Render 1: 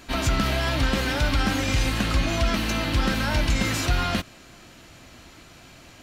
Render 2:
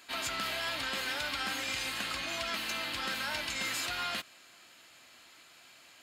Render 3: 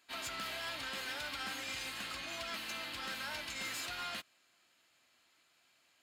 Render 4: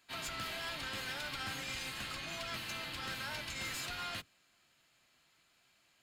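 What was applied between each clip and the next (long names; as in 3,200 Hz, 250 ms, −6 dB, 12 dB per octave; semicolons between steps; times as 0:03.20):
high-pass filter 1,500 Hz 6 dB per octave; notch filter 5,800 Hz, Q 8.2; level −4.5 dB
hard clipping −30 dBFS, distortion −18 dB; expander for the loud parts 1.5 to 1, over −53 dBFS; level −5 dB
sub-octave generator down 1 octave, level +3 dB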